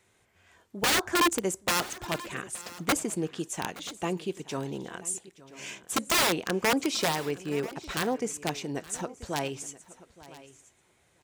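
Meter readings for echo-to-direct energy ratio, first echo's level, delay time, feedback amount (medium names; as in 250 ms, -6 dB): -16.5 dB, -20.0 dB, 871 ms, no regular repeats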